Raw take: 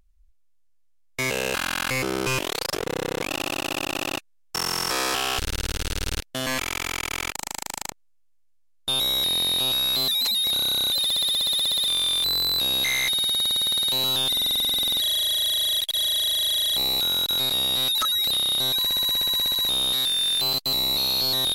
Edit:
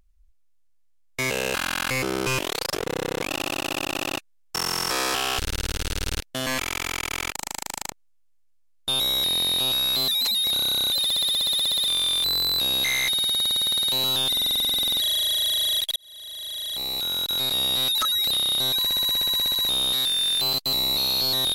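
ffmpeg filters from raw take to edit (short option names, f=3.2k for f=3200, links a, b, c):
-filter_complex "[0:a]asplit=2[a][b];[a]atrim=end=15.96,asetpts=PTS-STARTPTS,afade=t=out:st=15.956:d=0.004:c=hsin[c];[b]atrim=start=15.96,asetpts=PTS-STARTPTS,afade=t=in:d=1.68[d];[c][d]concat=n=2:v=0:a=1"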